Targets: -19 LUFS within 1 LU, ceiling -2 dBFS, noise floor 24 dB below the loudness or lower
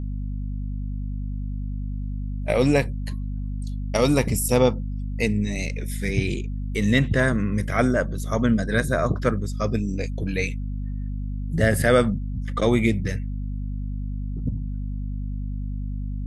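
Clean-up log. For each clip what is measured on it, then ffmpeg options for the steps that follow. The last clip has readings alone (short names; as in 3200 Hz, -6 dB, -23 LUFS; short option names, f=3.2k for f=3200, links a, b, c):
hum 50 Hz; harmonics up to 250 Hz; hum level -26 dBFS; loudness -25.0 LUFS; peak -5.0 dBFS; loudness target -19.0 LUFS
-> -af "bandreject=f=50:t=h:w=6,bandreject=f=100:t=h:w=6,bandreject=f=150:t=h:w=6,bandreject=f=200:t=h:w=6,bandreject=f=250:t=h:w=6"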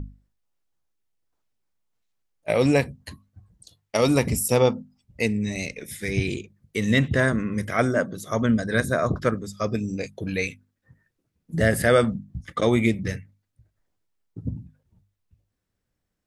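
hum none; loudness -24.0 LUFS; peak -5.5 dBFS; loudness target -19.0 LUFS
-> -af "volume=5dB,alimiter=limit=-2dB:level=0:latency=1"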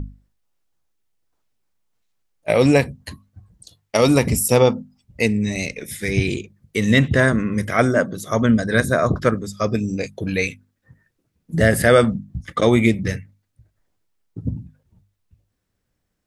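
loudness -19.0 LUFS; peak -2.0 dBFS; noise floor -74 dBFS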